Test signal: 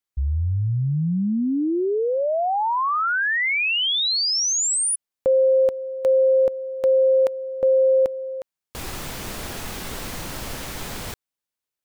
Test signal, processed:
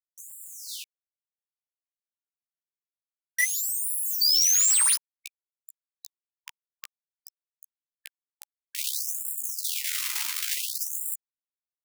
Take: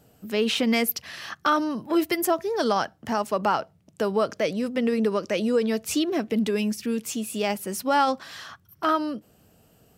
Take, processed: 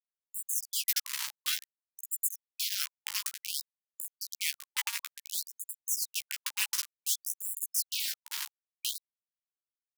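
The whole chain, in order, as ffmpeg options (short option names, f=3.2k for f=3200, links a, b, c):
-filter_complex "[0:a]afftfilt=real='re*(1-between(b*sr/4096,120,1900))':imag='im*(1-between(b*sr/4096,120,1900))':win_size=4096:overlap=0.75,areverse,acompressor=threshold=-36dB:ratio=6:attack=4.7:release=847:knee=6:detection=peak,areverse,aeval=exprs='0.075*sin(PI/2*3.98*val(0)/0.075)':c=same,acrusher=bits=3:mix=0:aa=0.000001,asplit=2[a][b];[b]adelay=14,volume=-5dB[c];[a][c]amix=inputs=2:normalize=0,afftfilt=real='re*gte(b*sr/1024,830*pow(7200/830,0.5+0.5*sin(2*PI*0.56*pts/sr)))':imag='im*gte(b*sr/1024,830*pow(7200/830,0.5+0.5*sin(2*PI*0.56*pts/sr)))':win_size=1024:overlap=0.75,volume=-2dB"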